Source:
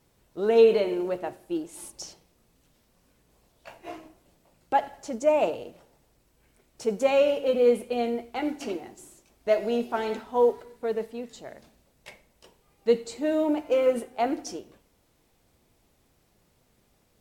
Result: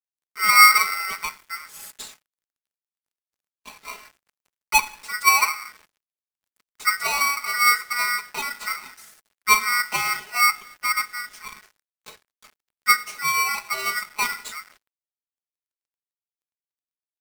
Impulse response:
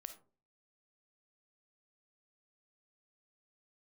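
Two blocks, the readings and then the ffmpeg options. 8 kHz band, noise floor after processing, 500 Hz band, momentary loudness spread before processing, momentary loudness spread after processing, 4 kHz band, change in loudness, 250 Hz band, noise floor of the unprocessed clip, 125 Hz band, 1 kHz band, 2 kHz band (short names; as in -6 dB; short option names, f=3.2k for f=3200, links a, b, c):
+18.5 dB, under -85 dBFS, -22.5 dB, 19 LU, 19 LU, +15.5 dB, +6.0 dB, -19.5 dB, -67 dBFS, n/a, +10.0 dB, +20.0 dB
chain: -af "aecho=1:1:4.7:0.92,acrusher=bits=7:mix=0:aa=0.5,aeval=exprs='val(0)*sgn(sin(2*PI*1700*n/s))':c=same"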